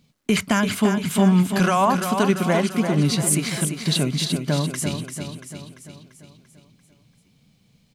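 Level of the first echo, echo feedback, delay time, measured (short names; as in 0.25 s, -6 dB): -7.0 dB, 54%, 0.342 s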